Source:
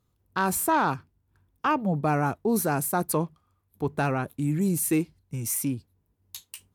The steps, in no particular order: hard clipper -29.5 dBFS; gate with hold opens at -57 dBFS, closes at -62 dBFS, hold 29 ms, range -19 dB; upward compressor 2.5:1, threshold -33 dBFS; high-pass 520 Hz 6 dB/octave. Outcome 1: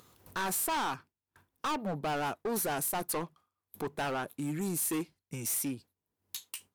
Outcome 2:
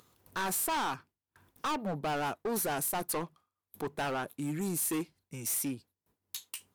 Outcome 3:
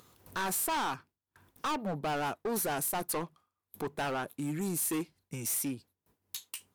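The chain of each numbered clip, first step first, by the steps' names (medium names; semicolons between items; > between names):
high-pass > gate with hold > upward compressor > hard clipper; gate with hold > upward compressor > high-pass > hard clipper; gate with hold > high-pass > upward compressor > hard clipper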